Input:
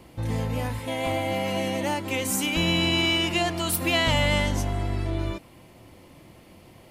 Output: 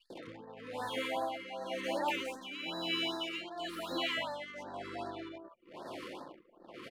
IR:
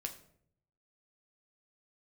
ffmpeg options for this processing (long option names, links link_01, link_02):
-filter_complex "[0:a]asplit=2[link_01][link_02];[link_02]alimiter=limit=-22dB:level=0:latency=1,volume=-1dB[link_03];[link_01][link_03]amix=inputs=2:normalize=0,acompressor=threshold=-35dB:ratio=6,highpass=490,acrossover=split=620|2200[link_04][link_05][link_06];[link_04]adelay=100[link_07];[link_05]adelay=170[link_08];[link_07][link_08][link_06]amix=inputs=3:normalize=0,acrossover=split=3600[link_09][link_10];[link_09]acontrast=70[link_11];[link_10]aeval=exprs='(tanh(562*val(0)+0.15)-tanh(0.15))/562':channel_layout=same[link_12];[link_11][link_12]amix=inputs=2:normalize=0,tremolo=f=1:d=0.67,anlmdn=0.00631,afftfilt=real='re*(1-between(b*sr/1024,700*pow(2700/700,0.5+0.5*sin(2*PI*2.6*pts/sr))/1.41,700*pow(2700/700,0.5+0.5*sin(2*PI*2.6*pts/sr))*1.41))':imag='im*(1-between(b*sr/1024,700*pow(2700/700,0.5+0.5*sin(2*PI*2.6*pts/sr))/1.41,700*pow(2700/700,0.5+0.5*sin(2*PI*2.6*pts/sr))*1.41))':win_size=1024:overlap=0.75,volume=3dB"